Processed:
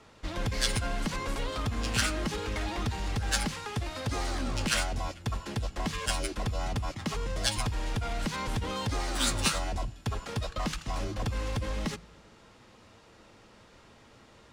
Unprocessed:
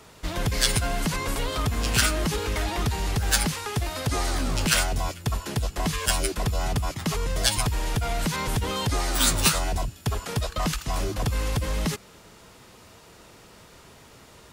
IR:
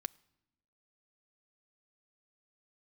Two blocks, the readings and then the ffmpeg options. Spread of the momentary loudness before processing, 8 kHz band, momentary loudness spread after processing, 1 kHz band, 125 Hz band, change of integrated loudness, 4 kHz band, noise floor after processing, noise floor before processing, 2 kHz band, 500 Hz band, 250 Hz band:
7 LU, −8.5 dB, 7 LU, −5.5 dB, −6.0 dB, −6.5 dB, −6.0 dB, −57 dBFS, −51 dBFS, −5.5 dB, −5.5 dB, −5.0 dB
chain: -filter_complex "[0:a]adynamicsmooth=sensitivity=4:basefreq=6400[link_01];[1:a]atrim=start_sample=2205[link_02];[link_01][link_02]afir=irnorm=-1:irlink=0,volume=-3dB"

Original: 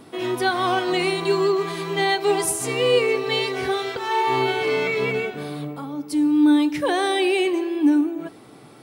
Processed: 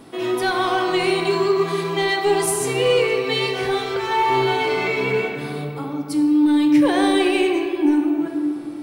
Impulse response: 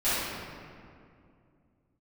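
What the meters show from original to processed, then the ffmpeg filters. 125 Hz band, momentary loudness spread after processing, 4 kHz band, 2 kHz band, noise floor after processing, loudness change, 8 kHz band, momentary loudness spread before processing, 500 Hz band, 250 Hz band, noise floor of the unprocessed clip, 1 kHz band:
+3.0 dB, 9 LU, +1.0 dB, +1.5 dB, −31 dBFS, +2.0 dB, +1.0 dB, 9 LU, +2.0 dB, +2.5 dB, −46 dBFS, +2.0 dB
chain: -filter_complex "[0:a]asoftclip=type=tanh:threshold=-12dB,asplit=2[link_01][link_02];[1:a]atrim=start_sample=2205[link_03];[link_02][link_03]afir=irnorm=-1:irlink=0,volume=-15.5dB[link_04];[link_01][link_04]amix=inputs=2:normalize=0"

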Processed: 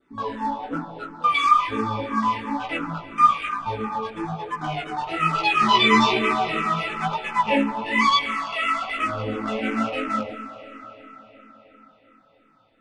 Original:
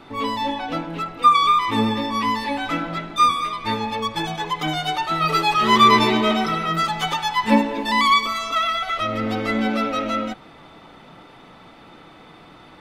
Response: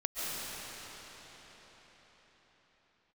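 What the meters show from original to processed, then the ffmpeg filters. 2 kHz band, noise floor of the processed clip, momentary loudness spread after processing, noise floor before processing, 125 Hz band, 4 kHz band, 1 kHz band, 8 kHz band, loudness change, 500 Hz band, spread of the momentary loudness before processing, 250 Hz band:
−0.5 dB, −59 dBFS, 14 LU, −46 dBFS, −3.0 dB, −3.5 dB, −2.5 dB, −6.0 dB, −2.5 dB, −3.0 dB, 10 LU, −3.5 dB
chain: -filter_complex "[0:a]afwtdn=0.0501,adynamicequalizer=threshold=0.01:dfrequency=2600:dqfactor=3.1:tfrequency=2600:tqfactor=3.1:attack=5:release=100:ratio=0.375:range=4:mode=boostabove:tftype=bell,asplit=2[link_01][link_02];[link_02]acrusher=bits=3:mix=0:aa=0.5,volume=-11.5dB[link_03];[link_01][link_03]amix=inputs=2:normalize=0,flanger=delay=15.5:depth=7.3:speed=1.1,asplit=2[link_04][link_05];[1:a]atrim=start_sample=2205[link_06];[link_05][link_06]afir=irnorm=-1:irlink=0,volume=-16.5dB[link_07];[link_04][link_07]amix=inputs=2:normalize=0,aresample=22050,aresample=44100,asplit=2[link_08][link_09];[link_09]afreqshift=-2.9[link_10];[link_08][link_10]amix=inputs=2:normalize=1"

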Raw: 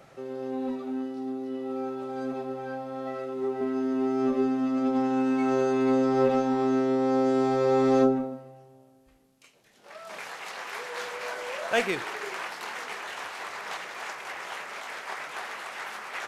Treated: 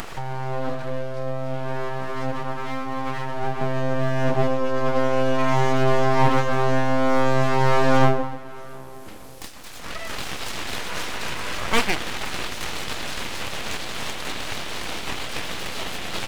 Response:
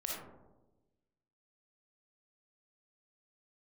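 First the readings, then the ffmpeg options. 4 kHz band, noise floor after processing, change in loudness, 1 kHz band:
+11.0 dB, −36 dBFS, +3.5 dB, +7.0 dB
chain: -af "acompressor=mode=upward:threshold=-28dB:ratio=2.5,aeval=exprs='0.266*(cos(1*acos(clip(val(0)/0.266,-1,1)))-cos(1*PI/2))+0.0211*(cos(6*acos(clip(val(0)/0.266,-1,1)))-cos(6*PI/2))':channel_layout=same,aeval=exprs='abs(val(0))':channel_layout=same,volume=7dB"

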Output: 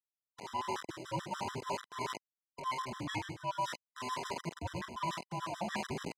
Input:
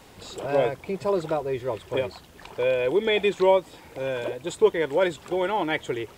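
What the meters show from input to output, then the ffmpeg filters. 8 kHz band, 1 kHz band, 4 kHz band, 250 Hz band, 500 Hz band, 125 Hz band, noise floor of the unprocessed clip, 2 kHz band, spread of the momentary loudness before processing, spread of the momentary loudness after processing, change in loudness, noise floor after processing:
can't be measured, −6.0 dB, −9.5 dB, −13.0 dB, −22.5 dB, −6.5 dB, −50 dBFS, −12.0 dB, 12 LU, 4 LU, −14.5 dB, below −85 dBFS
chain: -filter_complex "[0:a]afftfilt=real='real(if(between(b,1,1008),(2*floor((b-1)/24)+1)*24-b,b),0)':imag='imag(if(between(b,1,1008),(2*floor((b-1)/24)+1)*24-b,b),0)*if(between(b,1,1008),-1,1)':win_size=2048:overlap=0.75,adynamicsmooth=sensitivity=1:basefreq=580,asplit=2[link_01][link_02];[link_02]adelay=48,volume=-9.5dB[link_03];[link_01][link_03]amix=inputs=2:normalize=0,asplit=2[link_04][link_05];[link_05]adelay=101,lowpass=frequency=820:poles=1,volume=-8dB,asplit=2[link_06][link_07];[link_07]adelay=101,lowpass=frequency=820:poles=1,volume=0.31,asplit=2[link_08][link_09];[link_09]adelay=101,lowpass=frequency=820:poles=1,volume=0.31,asplit=2[link_10][link_11];[link_11]adelay=101,lowpass=frequency=820:poles=1,volume=0.31[link_12];[link_04][link_06][link_08][link_10][link_12]amix=inputs=5:normalize=0,aeval=exprs='val(0)*gte(abs(val(0)),0.0251)':channel_layout=same,highpass=230,lowpass=6800,areverse,acompressor=threshold=-36dB:ratio=6,areverse,highshelf=frequency=3600:gain=8.5,afftfilt=real='re*gt(sin(2*PI*6.9*pts/sr)*(1-2*mod(floor(b*sr/1024/1000),2)),0)':imag='im*gt(sin(2*PI*6.9*pts/sr)*(1-2*mod(floor(b*sr/1024/1000),2)),0)':win_size=1024:overlap=0.75,volume=3dB"

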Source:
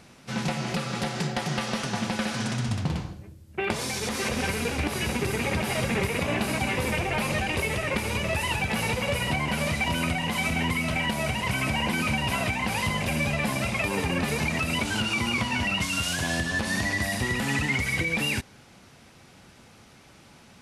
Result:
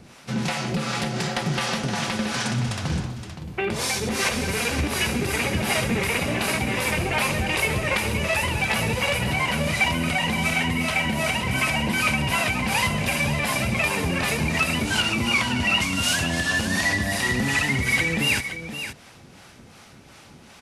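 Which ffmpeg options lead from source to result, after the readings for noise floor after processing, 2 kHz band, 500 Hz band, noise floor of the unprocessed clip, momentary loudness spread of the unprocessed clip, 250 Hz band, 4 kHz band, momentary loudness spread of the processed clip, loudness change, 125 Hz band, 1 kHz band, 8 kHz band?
−48 dBFS, +4.5 dB, +2.5 dB, −53 dBFS, 4 LU, +2.5 dB, +5.0 dB, 5 LU, +4.0 dB, +2.5 dB, +3.0 dB, +5.0 dB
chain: -filter_complex "[0:a]acrossover=split=1200[link_01][link_02];[link_01]alimiter=limit=-23.5dB:level=0:latency=1[link_03];[link_03][link_02]amix=inputs=2:normalize=0,acrossover=split=520[link_04][link_05];[link_04]aeval=exprs='val(0)*(1-0.7/2+0.7/2*cos(2*PI*2.7*n/s))':channel_layout=same[link_06];[link_05]aeval=exprs='val(0)*(1-0.7/2-0.7/2*cos(2*PI*2.7*n/s))':channel_layout=same[link_07];[link_06][link_07]amix=inputs=2:normalize=0,aecho=1:1:519:0.316,volume=7.5dB"

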